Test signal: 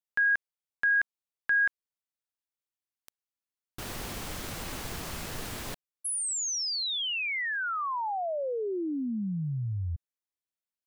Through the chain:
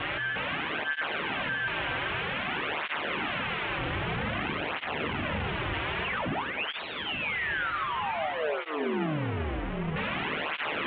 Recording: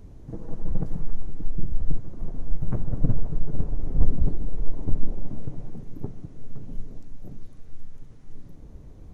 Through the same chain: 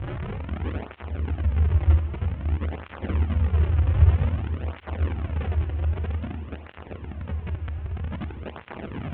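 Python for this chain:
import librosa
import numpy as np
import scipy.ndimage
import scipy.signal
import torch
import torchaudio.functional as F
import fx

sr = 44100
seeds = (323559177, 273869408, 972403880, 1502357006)

p1 = fx.delta_mod(x, sr, bps=16000, step_db=-19.5)
p2 = p1 * np.sin(2.0 * np.pi * 76.0 * np.arange(len(p1)) / sr)
p3 = p2 + fx.echo_diffused(p2, sr, ms=574, feedback_pct=78, wet_db=-15, dry=0)
p4 = fx.rev_schroeder(p3, sr, rt60_s=3.4, comb_ms=26, drr_db=7.5)
y = fx.flanger_cancel(p4, sr, hz=0.52, depth_ms=4.9)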